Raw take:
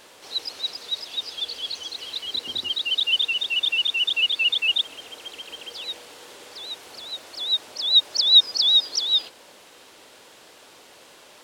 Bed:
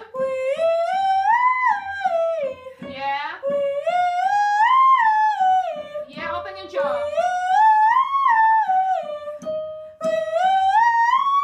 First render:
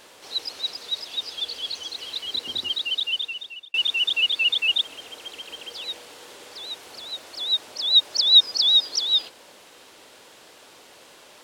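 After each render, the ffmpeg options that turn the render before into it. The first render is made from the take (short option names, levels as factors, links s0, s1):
-filter_complex "[0:a]asplit=2[s0][s1];[s0]atrim=end=3.74,asetpts=PTS-STARTPTS,afade=t=out:st=2.7:d=1.04[s2];[s1]atrim=start=3.74,asetpts=PTS-STARTPTS,afade=t=in:d=0.004:c=hsin[s3];[s2][s3]concat=n=2:v=0:a=1"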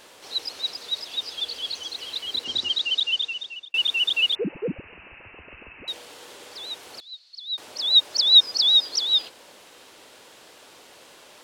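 -filter_complex "[0:a]asplit=3[s0][s1][s2];[s0]afade=t=out:st=2.44:d=0.02[s3];[s1]lowpass=f=6300:t=q:w=1.7,afade=t=in:st=2.44:d=0.02,afade=t=out:st=3.69:d=0.02[s4];[s2]afade=t=in:st=3.69:d=0.02[s5];[s3][s4][s5]amix=inputs=3:normalize=0,asettb=1/sr,asplit=3[s6][s7][s8];[s6]atrim=end=4.354[s9];[s7]atrim=start=4.35:end=5.88,asetpts=PTS-STARTPTS,afade=t=in:d=0.004:c=qsin,afade=t=out:st=1.526:d=0.004:c=qsin,lowpass=f=2600:t=q:w=0.5098,lowpass=f=2600:t=q:w=0.6013,lowpass=f=2600:t=q:w=0.9,lowpass=f=2600:t=q:w=2.563,afreqshift=-3100[s10];[s8]atrim=start=5.876[s11];[s9][s10]acrossfade=d=0.004:c1=hsin:c2=qsin[s12];[s12][s11]acrossfade=d=0.004:c1=qsin:c2=hsin,asettb=1/sr,asplit=3[s13][s14][s15];[s13]atrim=end=7.004[s16];[s14]atrim=start=7:end=7.58,asetpts=PTS-STARTPTS,afade=t=in:d=0.004:c=qsin,afade=t=out:st=0.576:d=0.004:c=qsin,bandpass=f=4300:t=q:w=8.4[s17];[s15]atrim=start=7.576[s18];[s16][s17]acrossfade=d=0.004:c1=hsin:c2=qsin[s19];[s19][s18]acrossfade=d=0.004:c1=qsin:c2=hsin"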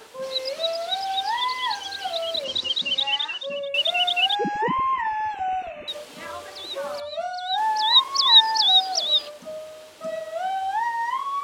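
-filter_complex "[1:a]volume=0.355[s0];[0:a][s0]amix=inputs=2:normalize=0"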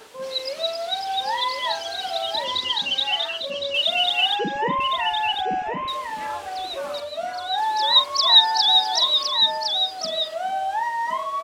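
-filter_complex "[0:a]asplit=2[s0][s1];[s1]adelay=43,volume=0.224[s2];[s0][s2]amix=inputs=2:normalize=0,aecho=1:1:1061:0.531"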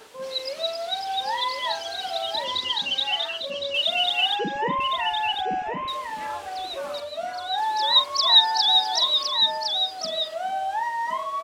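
-af "volume=0.794"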